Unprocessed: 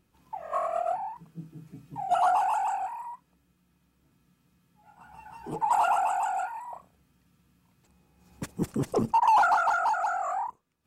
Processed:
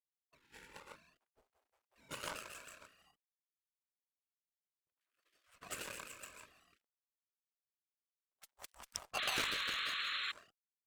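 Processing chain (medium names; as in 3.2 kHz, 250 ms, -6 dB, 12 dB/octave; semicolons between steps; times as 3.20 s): hysteresis with a dead band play -42.5 dBFS; 3.11–5.23 s: peaking EQ 3.6 kHz -8.5 dB 2.9 oct; spectral gate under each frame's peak -25 dB weak; Chebyshev shaper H 7 -18 dB, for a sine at -25.5 dBFS; 9.18–10.32 s: painted sound noise 1.1–4.3 kHz -45 dBFS; trim +5.5 dB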